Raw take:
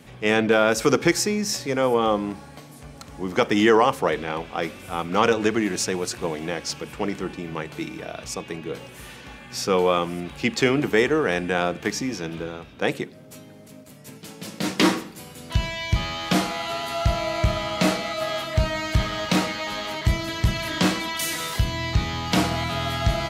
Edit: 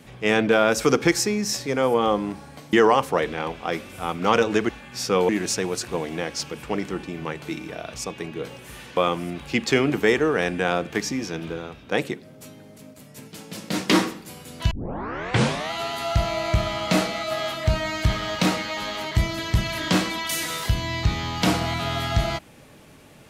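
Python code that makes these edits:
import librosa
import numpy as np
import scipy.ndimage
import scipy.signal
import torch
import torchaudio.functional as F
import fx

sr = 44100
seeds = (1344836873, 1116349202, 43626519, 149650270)

y = fx.edit(x, sr, fx.cut(start_s=2.73, length_s=0.9),
    fx.move(start_s=9.27, length_s=0.6, to_s=5.59),
    fx.tape_start(start_s=15.61, length_s=1.01), tone=tone)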